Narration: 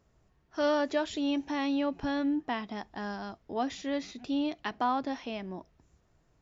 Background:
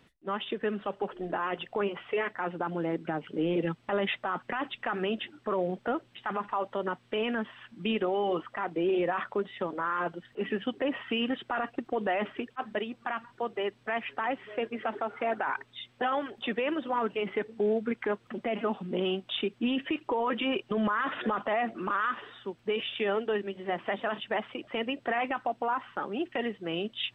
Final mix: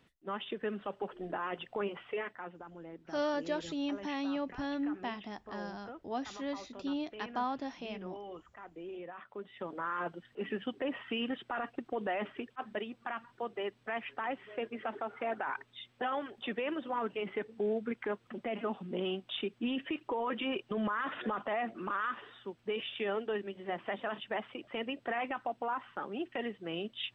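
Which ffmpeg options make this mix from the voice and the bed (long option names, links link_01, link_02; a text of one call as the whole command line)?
ffmpeg -i stem1.wav -i stem2.wav -filter_complex "[0:a]adelay=2550,volume=-5.5dB[link_01];[1:a]volume=6dB,afade=type=out:start_time=2.03:duration=0.6:silence=0.266073,afade=type=in:start_time=9.28:duration=0.56:silence=0.266073[link_02];[link_01][link_02]amix=inputs=2:normalize=0" out.wav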